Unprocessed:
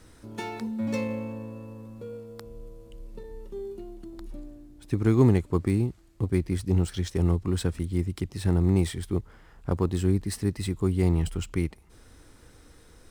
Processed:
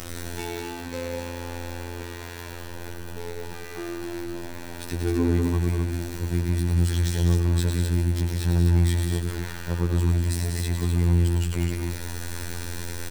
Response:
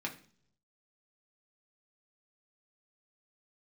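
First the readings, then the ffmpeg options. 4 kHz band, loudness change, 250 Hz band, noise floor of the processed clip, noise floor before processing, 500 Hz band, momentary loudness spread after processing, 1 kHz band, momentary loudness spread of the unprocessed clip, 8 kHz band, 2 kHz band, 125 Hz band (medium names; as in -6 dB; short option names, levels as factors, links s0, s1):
+6.5 dB, +1.0 dB, -1.0 dB, -37 dBFS, -54 dBFS, -1.5 dB, 15 LU, +2.5 dB, 20 LU, +7.0 dB, +6.5 dB, +3.5 dB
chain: -af "aeval=exprs='val(0)+0.5*0.0562*sgn(val(0))':c=same,afftfilt=real='hypot(re,im)*cos(PI*b)':imag='0':win_size=2048:overlap=0.75,aecho=1:1:105|195.3|256.6:0.501|0.447|0.562,volume=0.75"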